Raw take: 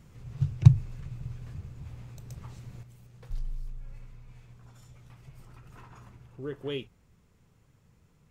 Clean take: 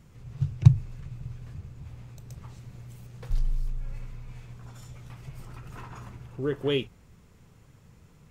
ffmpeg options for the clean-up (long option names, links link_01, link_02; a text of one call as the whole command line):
ffmpeg -i in.wav -af "asetnsamples=nb_out_samples=441:pad=0,asendcmd='2.83 volume volume 8dB',volume=0dB" out.wav